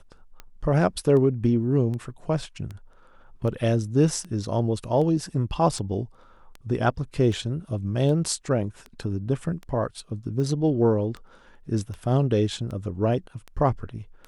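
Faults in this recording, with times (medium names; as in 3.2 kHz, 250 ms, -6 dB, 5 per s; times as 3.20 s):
tick 78 rpm -24 dBFS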